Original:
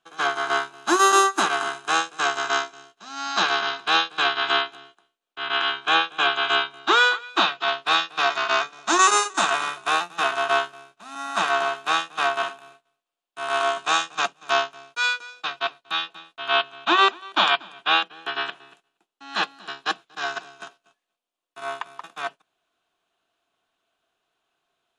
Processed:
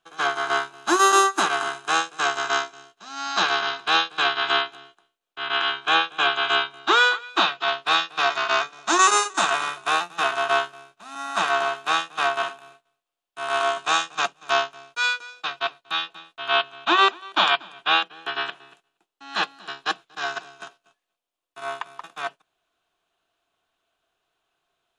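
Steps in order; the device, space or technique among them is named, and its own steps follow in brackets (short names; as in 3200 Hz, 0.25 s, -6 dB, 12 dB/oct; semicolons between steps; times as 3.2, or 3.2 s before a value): low shelf boost with a cut just above (low shelf 79 Hz +7.5 dB; bell 230 Hz -3.5 dB 0.65 oct)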